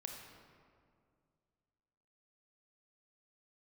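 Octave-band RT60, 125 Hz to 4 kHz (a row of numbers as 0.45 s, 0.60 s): 2.7 s, 2.5 s, 2.3 s, 2.0 s, 1.6 s, 1.2 s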